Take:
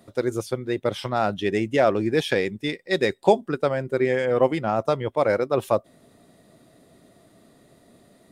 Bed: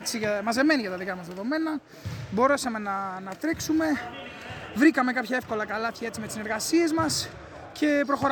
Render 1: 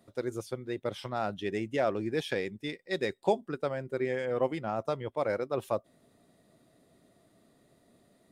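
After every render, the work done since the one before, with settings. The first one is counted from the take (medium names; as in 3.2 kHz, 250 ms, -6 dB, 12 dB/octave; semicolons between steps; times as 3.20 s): trim -9.5 dB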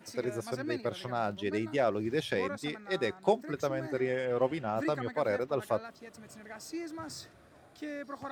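add bed -17 dB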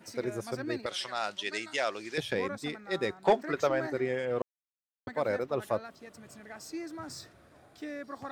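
0.86–2.18 s: frequency weighting ITU-R 468; 3.25–3.90 s: overdrive pedal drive 15 dB, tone 3 kHz, clips at -12.5 dBFS; 4.42–5.07 s: mute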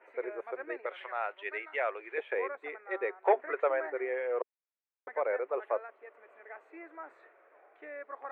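elliptic band-pass 420–2300 Hz, stop band 40 dB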